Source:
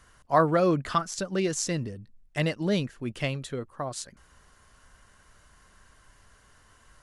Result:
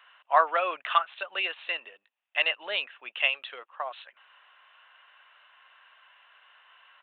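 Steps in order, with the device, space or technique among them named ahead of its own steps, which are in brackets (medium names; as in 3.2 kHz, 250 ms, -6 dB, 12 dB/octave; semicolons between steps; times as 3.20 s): musical greeting card (resampled via 8 kHz; high-pass 720 Hz 24 dB/octave; peaking EQ 2.7 kHz +10.5 dB 0.33 oct); trim +3 dB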